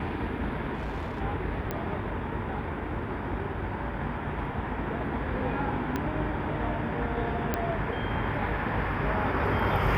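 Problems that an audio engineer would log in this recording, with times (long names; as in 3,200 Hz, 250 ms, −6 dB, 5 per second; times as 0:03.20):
0:00.74–0:01.22: clipping −29.5 dBFS
0:01.71: click −17 dBFS
0:05.96: click −16 dBFS
0:07.54: click −13 dBFS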